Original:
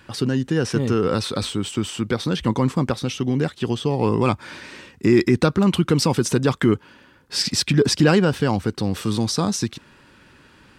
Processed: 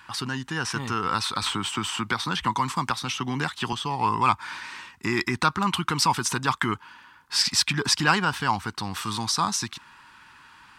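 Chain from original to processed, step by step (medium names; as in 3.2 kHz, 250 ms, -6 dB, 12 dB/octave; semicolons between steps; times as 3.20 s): resonant low shelf 710 Hz -10 dB, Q 3; 1.46–3.73 s: three bands compressed up and down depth 70%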